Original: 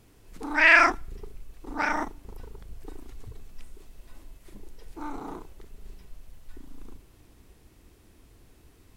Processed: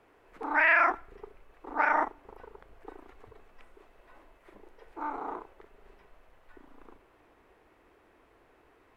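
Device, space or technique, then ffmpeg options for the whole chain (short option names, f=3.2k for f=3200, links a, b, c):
DJ mixer with the lows and highs turned down: -filter_complex "[0:a]acrossover=split=400 2300:gain=0.0891 1 0.0708[a][b][c];[a][b][c]amix=inputs=3:normalize=0,alimiter=limit=-18dB:level=0:latency=1:release=84,volume=5dB"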